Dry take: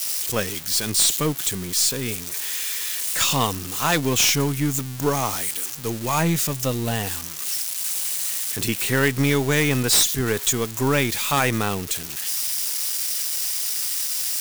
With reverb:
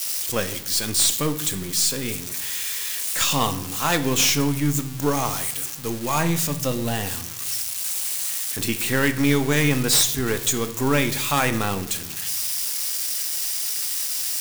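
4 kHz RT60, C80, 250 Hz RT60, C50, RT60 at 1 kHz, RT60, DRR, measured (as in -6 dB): 0.60 s, 16.5 dB, 1.2 s, 13.5 dB, 0.80 s, 0.80 s, 8.5 dB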